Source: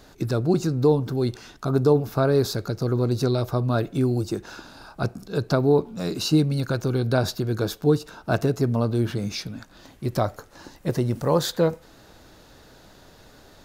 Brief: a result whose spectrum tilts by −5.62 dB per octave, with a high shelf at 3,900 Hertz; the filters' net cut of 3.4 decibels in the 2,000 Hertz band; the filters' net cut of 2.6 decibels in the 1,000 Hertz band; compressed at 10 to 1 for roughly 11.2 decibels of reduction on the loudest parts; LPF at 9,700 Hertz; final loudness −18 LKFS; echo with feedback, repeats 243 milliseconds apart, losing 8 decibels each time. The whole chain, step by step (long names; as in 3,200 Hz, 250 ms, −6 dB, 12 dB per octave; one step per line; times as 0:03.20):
low-pass filter 9,700 Hz
parametric band 1,000 Hz −3 dB
parametric band 2,000 Hz −5.5 dB
high-shelf EQ 3,900 Hz +8 dB
downward compressor 10 to 1, threshold −25 dBFS
repeating echo 243 ms, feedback 40%, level −8 dB
level +12 dB